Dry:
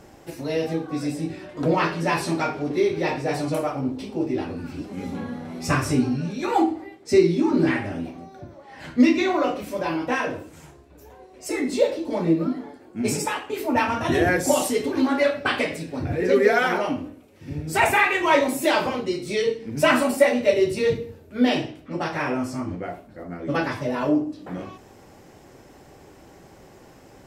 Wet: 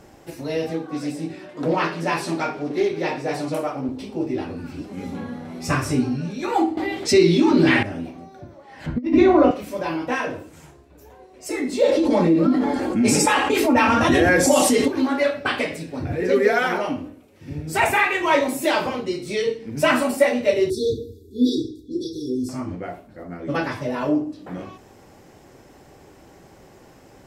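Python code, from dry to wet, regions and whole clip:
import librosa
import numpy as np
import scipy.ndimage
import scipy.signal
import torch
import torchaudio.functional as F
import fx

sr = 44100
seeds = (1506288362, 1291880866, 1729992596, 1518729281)

y = fx.chain(x, sr, fx.highpass(hz=150.0, slope=12),
    fx.doppler_dist(depth_ms=0.13), at=(0.7, 3.89))
y = fx.chain(y, sr, fx.peak_eq(hz=3400.0, db=8.5, octaves=1.1),
    fx.env_flatten(amount_pct=50), at=(6.77, 7.83))
y = fx.chain(y, sr, fx.tilt_eq(slope=-4.0),
    fx.over_compress(threshold_db=-15.0, ratio=-0.5), at=(8.86, 9.51))
y = fx.chain(y, sr, fx.lowpass(hz=11000.0, slope=12),
    fx.comb(ms=3.7, depth=0.39),
    fx.env_flatten(amount_pct=70), at=(11.83, 14.88))
y = fx.chain(y, sr, fx.brickwall_bandstop(low_hz=530.0, high_hz=3300.0),
    fx.comb(ms=2.9, depth=0.85), at=(20.7, 22.49))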